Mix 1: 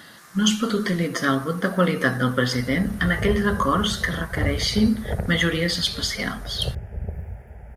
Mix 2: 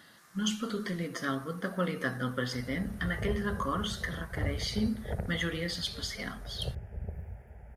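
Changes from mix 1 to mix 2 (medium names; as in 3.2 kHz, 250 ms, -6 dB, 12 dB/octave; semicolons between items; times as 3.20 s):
speech -11.5 dB; background -8.5 dB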